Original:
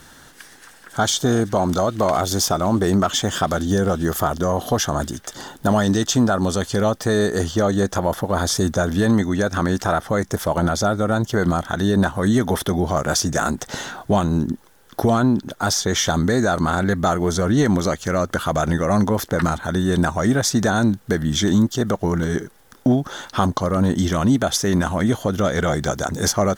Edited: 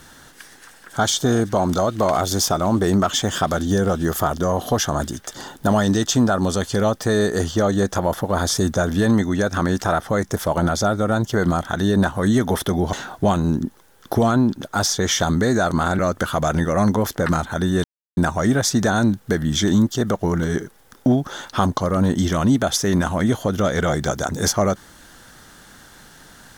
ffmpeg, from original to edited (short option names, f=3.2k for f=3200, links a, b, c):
-filter_complex "[0:a]asplit=4[a][b][c][d];[a]atrim=end=12.932[e];[b]atrim=start=13.798:end=16.862[f];[c]atrim=start=18.118:end=19.97,asetpts=PTS-STARTPTS,afade=t=out:st=1.848:d=0.004:c=hsin,apad=pad_dur=0.33[g];[d]atrim=start=19.97,asetpts=PTS-STARTPTS,afade=t=in:d=0.004:c=hsin[h];[e][f]acrossfade=d=0.004:c1=hsin:c2=hsin[i];[g][h]concat=n=2:v=0:a=1[j];[i][j]acrossfade=d=0.004:c1=hsin:c2=hsin"